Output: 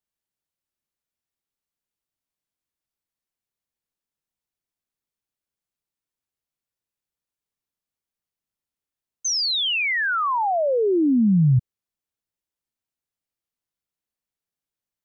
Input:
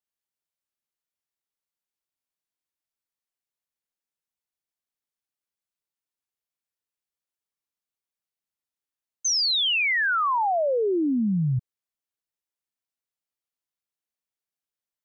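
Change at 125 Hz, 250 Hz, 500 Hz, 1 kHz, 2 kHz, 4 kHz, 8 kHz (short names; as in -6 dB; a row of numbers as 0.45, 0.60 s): +7.0 dB, +5.5 dB, +3.0 dB, +1.0 dB, +0.5 dB, 0.0 dB, n/a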